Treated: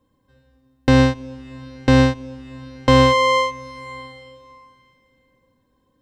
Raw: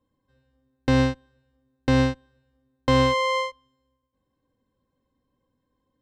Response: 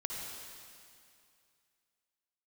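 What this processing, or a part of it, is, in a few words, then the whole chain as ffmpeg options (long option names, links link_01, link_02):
ducked reverb: -filter_complex "[0:a]asplit=3[link_01][link_02][link_03];[1:a]atrim=start_sample=2205[link_04];[link_02][link_04]afir=irnorm=-1:irlink=0[link_05];[link_03]apad=whole_len=265356[link_06];[link_05][link_06]sidechaincompress=threshold=-34dB:ratio=6:attack=8.4:release=595,volume=-5.5dB[link_07];[link_01][link_07]amix=inputs=2:normalize=0,volume=6dB"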